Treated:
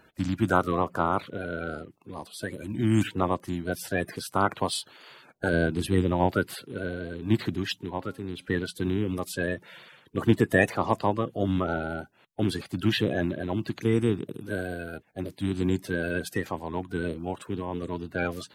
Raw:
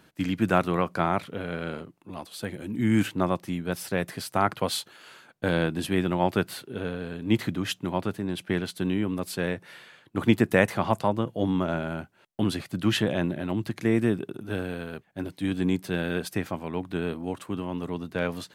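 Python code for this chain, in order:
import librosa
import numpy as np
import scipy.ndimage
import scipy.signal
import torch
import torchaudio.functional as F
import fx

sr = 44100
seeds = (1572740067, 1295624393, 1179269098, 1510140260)

y = fx.spec_quant(x, sr, step_db=30)
y = fx.low_shelf(y, sr, hz=140.0, db=7.5, at=(5.53, 6.35))
y = fx.comb_fb(y, sr, f0_hz=270.0, decay_s=1.1, harmonics='all', damping=0.0, mix_pct=40, at=(7.83, 8.46))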